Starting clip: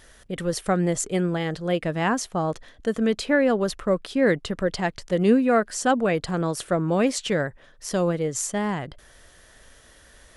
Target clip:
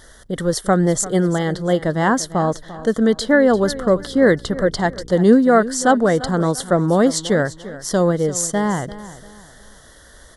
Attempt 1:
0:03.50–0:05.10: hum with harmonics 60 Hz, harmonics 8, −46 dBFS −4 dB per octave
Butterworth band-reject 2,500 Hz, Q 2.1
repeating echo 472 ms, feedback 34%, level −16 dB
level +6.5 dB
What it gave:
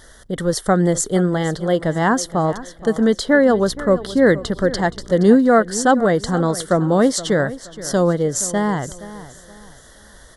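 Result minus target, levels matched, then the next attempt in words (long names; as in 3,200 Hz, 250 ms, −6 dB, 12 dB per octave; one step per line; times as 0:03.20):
echo 128 ms late
0:03.50–0:05.10: hum with harmonics 60 Hz, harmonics 8, −46 dBFS −4 dB per octave
Butterworth band-reject 2,500 Hz, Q 2.1
repeating echo 344 ms, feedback 34%, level −16 dB
level +6.5 dB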